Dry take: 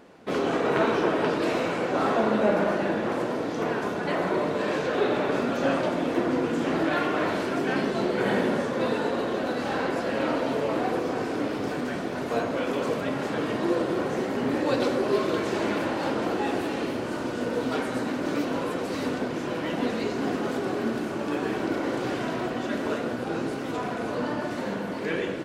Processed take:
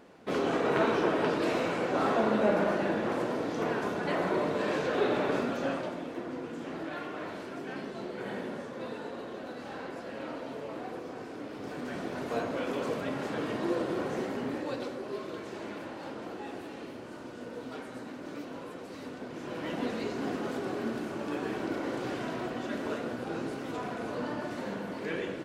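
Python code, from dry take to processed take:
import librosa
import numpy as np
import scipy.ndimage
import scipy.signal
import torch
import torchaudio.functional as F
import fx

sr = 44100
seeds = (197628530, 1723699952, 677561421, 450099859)

y = fx.gain(x, sr, db=fx.line((5.34, -3.5), (6.13, -13.0), (11.46, -13.0), (12.03, -5.5), (14.25, -5.5), (14.95, -13.5), (19.15, -13.5), (19.68, -6.0)))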